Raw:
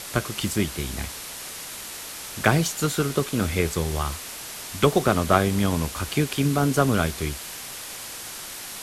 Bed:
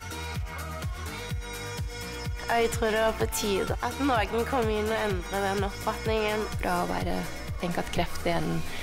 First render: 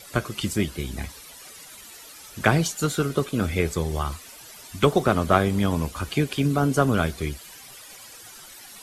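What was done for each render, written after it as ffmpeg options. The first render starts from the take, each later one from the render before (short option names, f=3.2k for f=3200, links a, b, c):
-af "afftdn=nr=13:nf=-37"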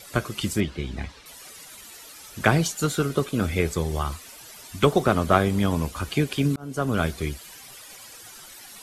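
-filter_complex "[0:a]asettb=1/sr,asplit=3[a][b][c];[a]atrim=end=0.604[d];[b]atrim=start=0.6:end=1.26,asetpts=PTS-STARTPTS,afade=t=in:d=0.004:c=qsin,afade=t=out:st=0.656:d=0.004:c=qsin,lowpass=4.2k[e];[c]atrim=start=1.256[f];[d][e]acrossfade=d=0.004:c1=hsin:c2=qsin[g];[g][f]acrossfade=d=0.004:c1=qsin:c2=hsin,asplit=2[h][i];[h]atrim=end=6.56,asetpts=PTS-STARTPTS,afade=t=out:st=6.556:d=0.004:c=hsin[j];[i]atrim=start=6.56,asetpts=PTS-STARTPTS,afade=t=in:d=0.5[k];[j][k]concat=n=2:v=0:a=1"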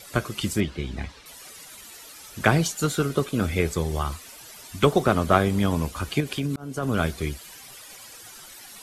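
-filter_complex "[0:a]asettb=1/sr,asplit=3[a][b][c];[a]atrim=end=6.204[d];[b]atrim=start=6.2:end=6.83,asetpts=PTS-STARTPTS,afade=t=in:d=0.004:c=qsin,afade=t=out:st=0.626:d=0.004:c=qsin,acompressor=threshold=-22dB:ratio=6:attack=3.2:release=140:knee=1:detection=peak[e];[c]atrim=start=6.826[f];[d][e]acrossfade=d=0.004:c1=hsin:c2=qsin[g];[g][f]acrossfade=d=0.004:c1=qsin:c2=hsin"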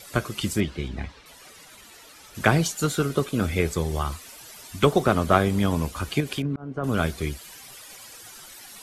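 -filter_complex "[0:a]asettb=1/sr,asplit=3[a][b][c];[a]atrim=end=0.884[d];[b]atrim=start=0.88:end=2.35,asetpts=PTS-STARTPTS,afade=t=in:d=0.004:c=qsin,afade=t=out:st=1.466:d=0.004:c=qsin,highshelf=f=5.2k:g=-8.5[e];[c]atrim=start=2.346[f];[d][e]acrossfade=d=0.004:c1=hsin:c2=qsin[g];[g][f]acrossfade=d=0.004:c1=qsin:c2=hsin,asettb=1/sr,asplit=3[h][i][j];[h]atrim=end=6.424[k];[i]atrim=start=6.42:end=6.84,asetpts=PTS-STARTPTS,afade=t=in:d=0.004:c=qsin,afade=t=out:st=0.416:d=0.004:c=qsin,lowpass=1.6k[l];[j]atrim=start=6.836[m];[k][l]acrossfade=d=0.004:c1=hsin:c2=qsin[n];[n][m]acrossfade=d=0.004:c1=qsin:c2=hsin"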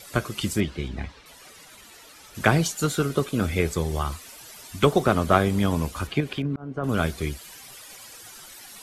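-filter_complex "[0:a]asettb=1/sr,asplit=3[a][b][c];[a]atrim=end=6.074[d];[b]atrim=start=6.07:end=6.89,asetpts=PTS-STARTPTS,afade=t=in:d=0.004:c=qsin,afade=t=out:st=0.816:d=0.004:c=qsin,acrossover=split=4000[e][f];[f]acompressor=threshold=-53dB:ratio=4:attack=1:release=60[g];[e][g]amix=inputs=2:normalize=0[h];[c]atrim=start=6.886[i];[d][h]acrossfade=d=0.004:c1=hsin:c2=qsin[j];[j][i]acrossfade=d=0.004:c1=qsin:c2=hsin"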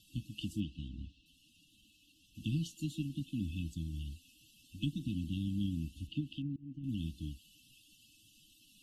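-filter_complex "[0:a]afftfilt=real='re*(1-between(b*sr/4096,330,2600))':imag='im*(1-between(b*sr/4096,330,2600))':win_size=4096:overlap=0.75,acrossover=split=590 2100:gain=0.251 1 0.0708[a][b][c];[a][b][c]amix=inputs=3:normalize=0"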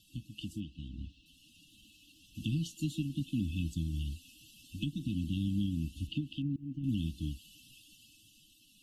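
-af "alimiter=level_in=5.5dB:limit=-24dB:level=0:latency=1:release=440,volume=-5.5dB,dynaudnorm=f=210:g=11:m=6dB"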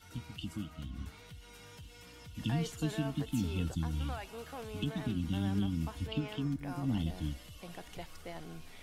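-filter_complex "[1:a]volume=-18dB[a];[0:a][a]amix=inputs=2:normalize=0"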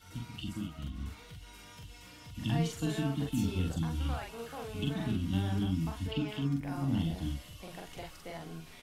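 -filter_complex "[0:a]asplit=2[a][b];[b]adelay=43,volume=-2dB[c];[a][c]amix=inputs=2:normalize=0"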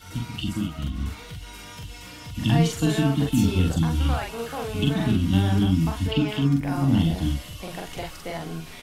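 -af "volume=11dB"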